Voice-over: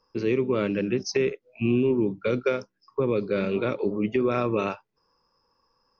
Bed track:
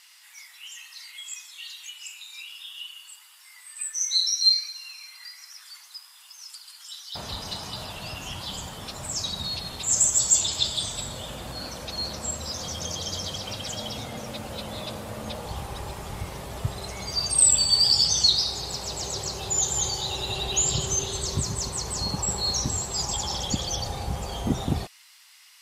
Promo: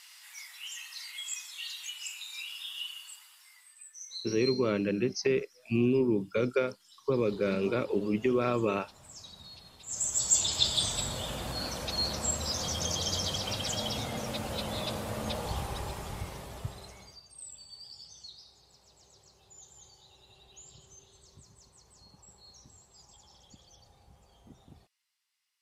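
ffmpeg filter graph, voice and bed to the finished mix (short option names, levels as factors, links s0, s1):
-filter_complex "[0:a]adelay=4100,volume=0.668[s0];[1:a]volume=8.41,afade=t=out:st=2.91:d=0.9:silence=0.11885,afade=t=in:st=9.86:d=0.95:silence=0.11885,afade=t=out:st=15.47:d=1.74:silence=0.0354813[s1];[s0][s1]amix=inputs=2:normalize=0"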